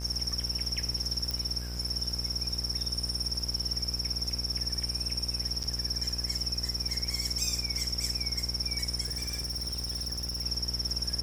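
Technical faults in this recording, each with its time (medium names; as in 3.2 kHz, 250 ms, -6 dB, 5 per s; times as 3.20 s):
buzz 60 Hz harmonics 28 -37 dBFS
crackle -39 dBFS
1.31 s: pop -18 dBFS
5.63–5.64 s: dropout 8.2 ms
9.05–10.42 s: clipped -30 dBFS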